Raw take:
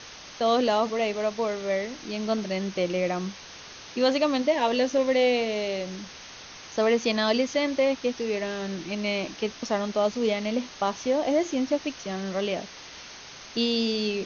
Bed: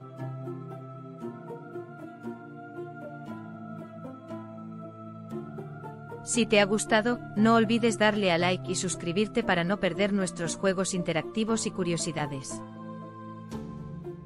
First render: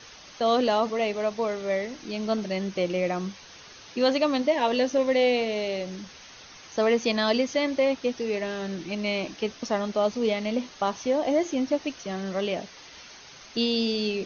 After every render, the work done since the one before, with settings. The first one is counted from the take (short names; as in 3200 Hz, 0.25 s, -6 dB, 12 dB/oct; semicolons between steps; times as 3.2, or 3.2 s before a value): denoiser 6 dB, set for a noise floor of -44 dBFS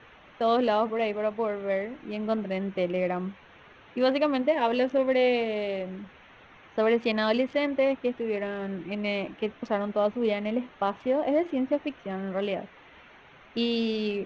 Wiener smoothing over 9 samples; Chebyshev low-pass 2800 Hz, order 2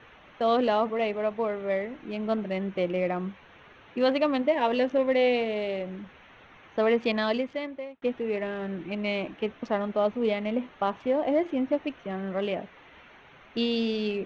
7.12–8.02 fade out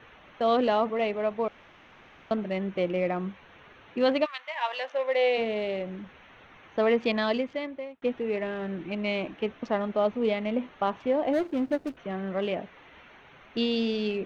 1.48–2.31 room tone; 4.24–5.37 HPF 1400 Hz -> 350 Hz 24 dB/oct; 11.33–11.97 median filter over 41 samples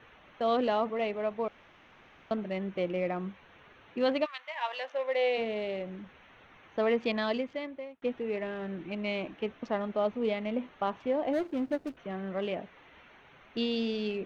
gain -4 dB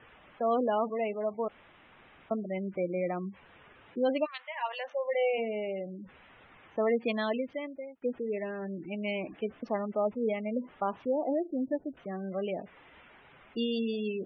spectral gate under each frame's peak -20 dB strong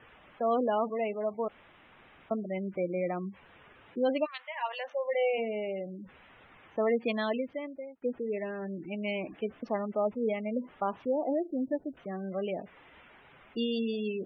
7.48–8.2 LPF 2200 Hz 6 dB/oct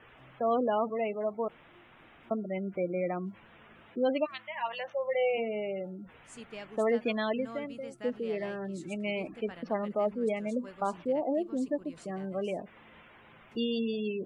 add bed -22.5 dB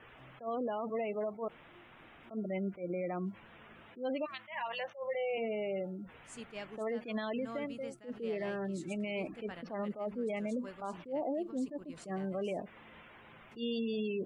limiter -28.5 dBFS, peak gain reduction 10.5 dB; attack slew limiter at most 220 dB/s